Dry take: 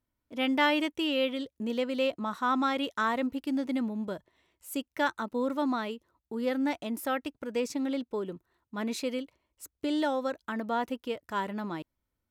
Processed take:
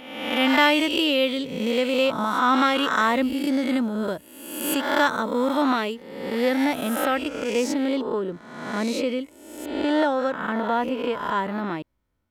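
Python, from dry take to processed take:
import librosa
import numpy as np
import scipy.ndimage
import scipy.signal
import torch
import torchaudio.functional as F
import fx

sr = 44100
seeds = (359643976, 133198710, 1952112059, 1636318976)

y = fx.spec_swells(x, sr, rise_s=1.04)
y = fx.high_shelf(y, sr, hz=4500.0, db=fx.steps((0.0, 3.5), (6.64, -2.0), (8.02, -10.0)))
y = y * librosa.db_to_amplitude(6.0)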